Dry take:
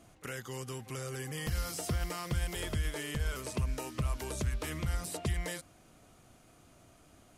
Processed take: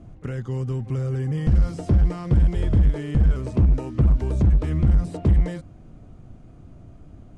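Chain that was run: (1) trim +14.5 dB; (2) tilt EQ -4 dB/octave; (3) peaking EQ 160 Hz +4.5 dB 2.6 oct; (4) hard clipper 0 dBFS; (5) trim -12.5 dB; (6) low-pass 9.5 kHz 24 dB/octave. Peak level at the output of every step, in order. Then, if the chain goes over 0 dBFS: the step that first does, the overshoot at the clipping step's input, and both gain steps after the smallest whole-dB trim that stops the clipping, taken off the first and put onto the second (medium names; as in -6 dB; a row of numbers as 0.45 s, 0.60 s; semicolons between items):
-8.5 dBFS, +7.0 dBFS, +9.0 dBFS, 0.0 dBFS, -12.5 dBFS, -12.5 dBFS; step 2, 9.0 dB; step 1 +5.5 dB, step 5 -3.5 dB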